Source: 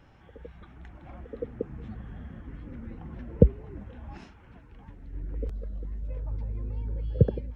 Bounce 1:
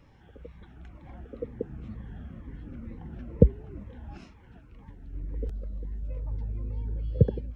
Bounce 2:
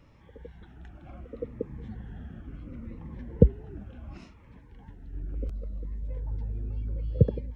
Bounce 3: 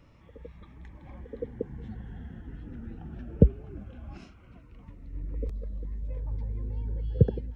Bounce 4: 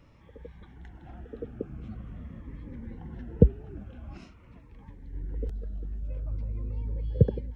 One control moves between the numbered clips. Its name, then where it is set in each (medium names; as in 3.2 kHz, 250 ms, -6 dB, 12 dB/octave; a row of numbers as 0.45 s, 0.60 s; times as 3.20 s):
Shepard-style phaser, rate: 2.1 Hz, 0.7 Hz, 0.2 Hz, 0.45 Hz